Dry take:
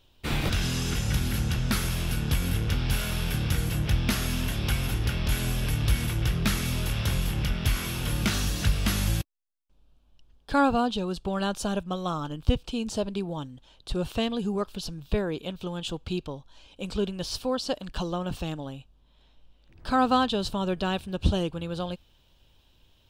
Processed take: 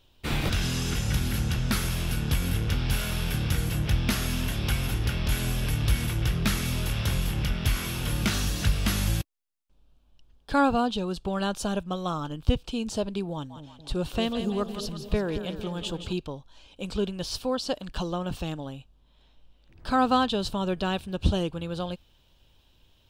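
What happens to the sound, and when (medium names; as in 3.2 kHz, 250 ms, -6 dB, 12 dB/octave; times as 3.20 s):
13.33–16.13 s: two-band feedback delay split 600 Hz, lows 227 ms, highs 169 ms, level -9 dB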